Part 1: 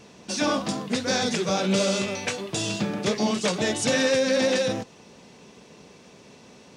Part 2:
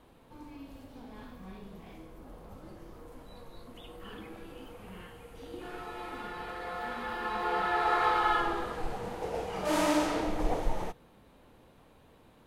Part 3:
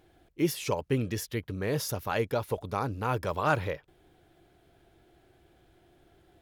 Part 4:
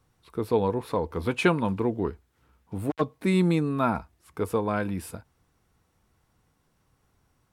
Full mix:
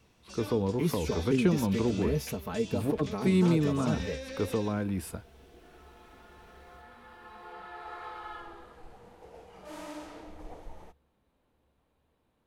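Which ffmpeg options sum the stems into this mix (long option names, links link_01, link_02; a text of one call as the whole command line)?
ffmpeg -i stem1.wav -i stem2.wav -i stem3.wav -i stem4.wav -filter_complex "[0:a]equalizer=frequency=2700:width_type=o:width=1.3:gain=5.5,volume=-20dB[link_01];[1:a]volume=-15.5dB[link_02];[2:a]aecho=1:1:4.6:0.86,acrossover=split=400[link_03][link_04];[link_04]acompressor=threshold=-48dB:ratio=2[link_05];[link_03][link_05]amix=inputs=2:normalize=0,adelay=400,volume=1dB[link_06];[3:a]acrossover=split=420[link_07][link_08];[link_08]acompressor=threshold=-32dB:ratio=6[link_09];[link_07][link_09]amix=inputs=2:normalize=0,volume=-1dB[link_10];[link_01][link_02][link_06][link_10]amix=inputs=4:normalize=0,acrossover=split=500|3000[link_11][link_12][link_13];[link_12]acompressor=threshold=-35dB:ratio=6[link_14];[link_11][link_14][link_13]amix=inputs=3:normalize=0,equalizer=frequency=69:width=7.8:gain=13" out.wav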